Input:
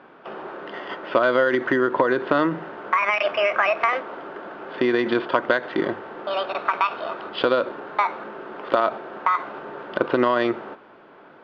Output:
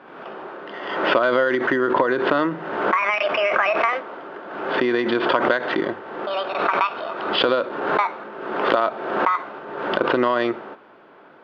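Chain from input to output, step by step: bass shelf 140 Hz -4.5 dB; swell ahead of each attack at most 49 dB/s

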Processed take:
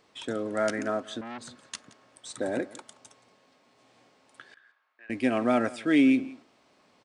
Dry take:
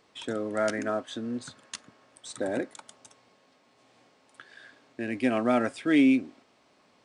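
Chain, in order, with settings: 4.54–5.10 s: ladder band-pass 1.5 kHz, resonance 35%; delay 174 ms -20 dB; 1.21–1.61 s: transformer saturation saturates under 1.4 kHz

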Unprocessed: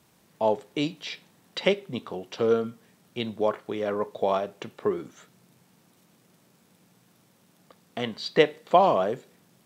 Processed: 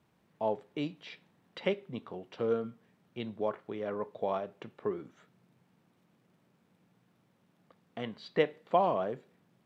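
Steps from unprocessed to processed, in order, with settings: tone controls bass +2 dB, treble -13 dB; trim -8 dB

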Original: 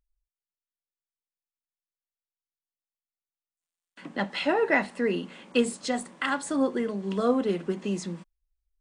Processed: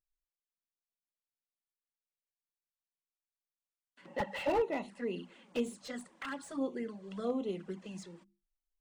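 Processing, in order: hum notches 50/100/150/200/250/300/350 Hz; touch-sensitive flanger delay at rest 8.9 ms, full sweep at -22.5 dBFS; 4.07–4.61 s: small resonant body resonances 550/850/1900/2700 Hz, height 17 dB -> 14 dB, ringing for 30 ms; slew-rate limiter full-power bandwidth 83 Hz; trim -9 dB

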